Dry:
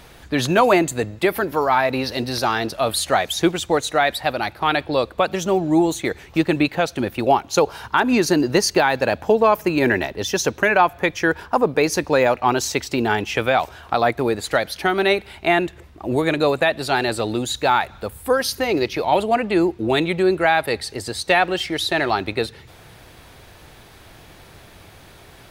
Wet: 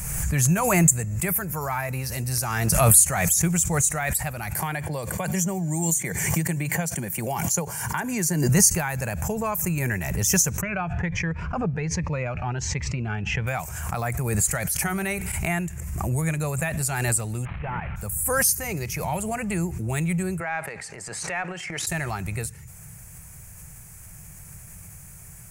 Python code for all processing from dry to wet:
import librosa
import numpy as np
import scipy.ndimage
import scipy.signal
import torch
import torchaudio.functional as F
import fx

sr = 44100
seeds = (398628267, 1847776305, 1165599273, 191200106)

y = fx.chain(x, sr, fx.highpass(hz=120.0, slope=12),
    fx.notch_comb(f0_hz=1300.0),
    fx.band_squash(depth_pct=70), at=(4.55, 8.49))
y = fx.chain(y, sr, fx.lowpass(hz=3500.0, slope=24),
    fx.notch_cascade(direction='rising', hz=1.3), at=(10.61, 13.47))
y = fx.chain(y, sr, fx.hum_notches(base_hz=60, count=7),
    fx.env_flatten(amount_pct=50), at=(14.78, 15.32))
y = fx.chain(y, sr, fx.delta_mod(bps=16000, step_db=-23.0),
    fx.level_steps(step_db=10), at=(17.45, 17.96))
y = fx.chain(y, sr, fx.bandpass_edges(low_hz=360.0, high_hz=2500.0),
    fx.transient(attack_db=-8, sustain_db=8), at=(20.4, 21.87))
y = fx.curve_eq(y, sr, hz=(100.0, 170.0, 270.0, 2400.0, 3700.0, 7200.0, 15000.0), db=(0, 3, -20, -9, -25, 10, 7))
y = fx.pre_swell(y, sr, db_per_s=31.0)
y = y * 10.0 ** (2.0 / 20.0)